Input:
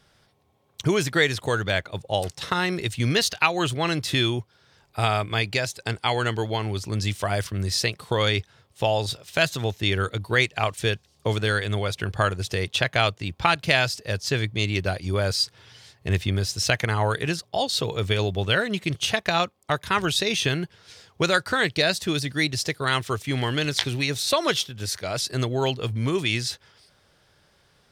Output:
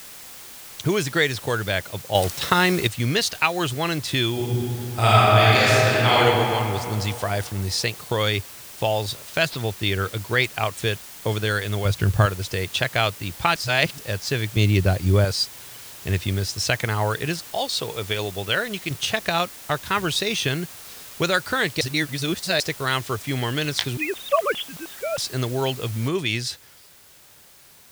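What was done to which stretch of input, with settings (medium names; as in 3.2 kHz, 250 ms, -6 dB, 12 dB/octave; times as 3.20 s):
2.15–2.87 s: gain +6 dB
4.32–6.18 s: reverb throw, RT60 2.8 s, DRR -9 dB
9.50–10.44 s: careless resampling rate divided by 4×, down none, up filtered
11.85–12.26 s: bass shelf 250 Hz +12 dB
13.56–13.98 s: reverse
14.56–15.25 s: bass shelf 410 Hz +9.5 dB
17.49–18.91 s: bass shelf 270 Hz -8 dB
21.81–22.60 s: reverse
23.97–25.18 s: formants replaced by sine waves
26.08 s: noise floor step -41 dB -51 dB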